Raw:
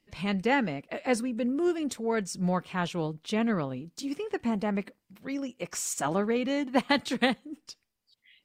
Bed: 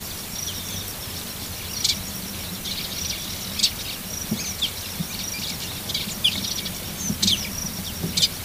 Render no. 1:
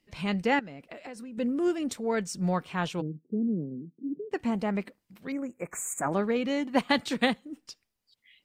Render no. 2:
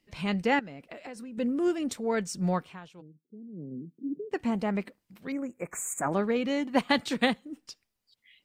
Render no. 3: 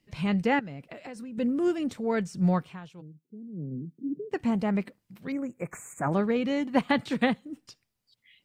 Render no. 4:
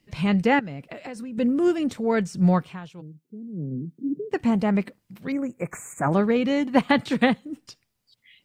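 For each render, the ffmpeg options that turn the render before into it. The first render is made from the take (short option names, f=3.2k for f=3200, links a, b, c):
-filter_complex "[0:a]asettb=1/sr,asplit=3[a][b][c];[a]atrim=end=0.594[d];[b]atrim=start=0.59:end=1.38,asetpts=PTS-STARTPTS,afade=t=in:d=0.004:c=qsin,afade=t=out:st=0.786:d=0.004:c=qsin,acompressor=threshold=-38dB:ratio=16:attack=3.2:release=140:knee=1:detection=peak[e];[c]atrim=start=1.376[f];[d][e]acrossfade=d=0.004:c1=hsin:c2=qsin[g];[g][f]acrossfade=d=0.004:c1=qsin:c2=hsin,asplit=3[h][i][j];[h]afade=t=out:st=3:d=0.02[k];[i]asuperpass=centerf=240:order=8:qfactor=0.86,afade=t=in:st=3:d=0.02,afade=t=out:st=4.31:d=0.02[l];[j]afade=t=in:st=4.31:d=0.02[m];[k][l][m]amix=inputs=3:normalize=0,asettb=1/sr,asplit=3[n][o][p];[n]atrim=end=5.324[q];[o]atrim=start=5.32:end=6.13,asetpts=PTS-STARTPTS,afade=t=in:d=0.004:c=qsin,afade=t=out:st=0.806:d=0.004:c=qsin,asuperstop=centerf=4100:order=12:qfactor=0.91[r];[p]atrim=start=6.126[s];[q][r]acrossfade=d=0.004:c1=hsin:c2=qsin[t];[t][s]acrossfade=d=0.004:c1=qsin:c2=hsin"
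-filter_complex "[0:a]asplit=3[a][b][c];[a]atrim=end=2.8,asetpts=PTS-STARTPTS,afade=t=out:st=2.55:d=0.25:silence=0.133352[d];[b]atrim=start=2.8:end=3.52,asetpts=PTS-STARTPTS,volume=-17.5dB[e];[c]atrim=start=3.52,asetpts=PTS-STARTPTS,afade=t=in:d=0.25:silence=0.133352[f];[d][e][f]concat=n=3:v=0:a=1"
-filter_complex "[0:a]acrossover=split=3000[a][b];[b]acompressor=threshold=-44dB:ratio=4:attack=1:release=60[c];[a][c]amix=inputs=2:normalize=0,equalizer=f=130:w=1.4:g=9"
-af "volume=5dB"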